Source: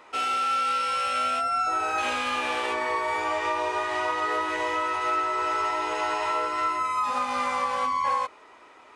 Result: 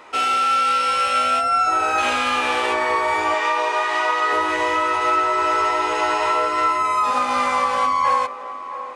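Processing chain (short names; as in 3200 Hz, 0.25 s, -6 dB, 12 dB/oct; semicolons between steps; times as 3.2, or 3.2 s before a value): 3.34–4.33 weighting filter A; on a send: narrowing echo 0.672 s, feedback 47%, band-pass 610 Hz, level -11 dB; on the sum: gain +7 dB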